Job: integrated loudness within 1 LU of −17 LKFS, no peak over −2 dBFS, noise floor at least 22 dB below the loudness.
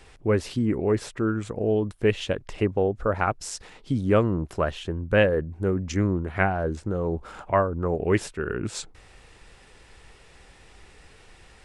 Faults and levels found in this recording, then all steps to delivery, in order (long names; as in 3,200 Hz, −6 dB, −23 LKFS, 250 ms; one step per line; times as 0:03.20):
integrated loudness −26.0 LKFS; sample peak −6.5 dBFS; target loudness −17.0 LKFS
→ level +9 dB
brickwall limiter −2 dBFS